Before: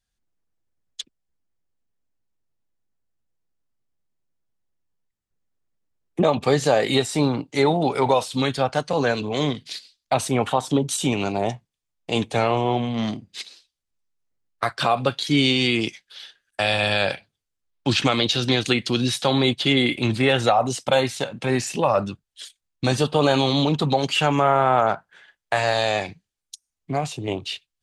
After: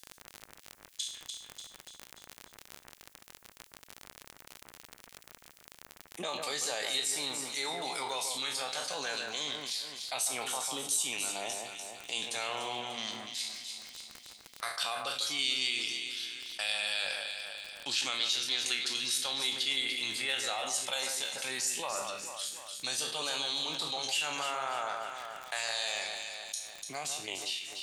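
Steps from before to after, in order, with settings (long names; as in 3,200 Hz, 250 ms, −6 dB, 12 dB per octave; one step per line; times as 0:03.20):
peak hold with a decay on every bin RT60 0.31 s
first difference
surface crackle 28 per second −43 dBFS
in parallel at −2.5 dB: output level in coarse steps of 15 dB
on the sum: delay that swaps between a low-pass and a high-pass 147 ms, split 2,000 Hz, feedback 58%, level −6 dB
envelope flattener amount 50%
level −8.5 dB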